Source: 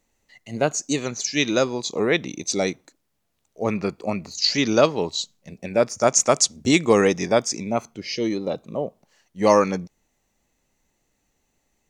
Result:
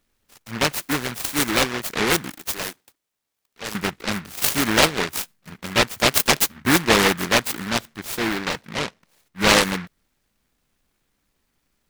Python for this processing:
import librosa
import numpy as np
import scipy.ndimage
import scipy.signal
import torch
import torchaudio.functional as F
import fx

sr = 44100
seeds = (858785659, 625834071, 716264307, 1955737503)

y = fx.highpass(x, sr, hz=1200.0, slope=6, at=(2.3, 3.75))
y = fx.noise_mod_delay(y, sr, seeds[0], noise_hz=1500.0, depth_ms=0.37)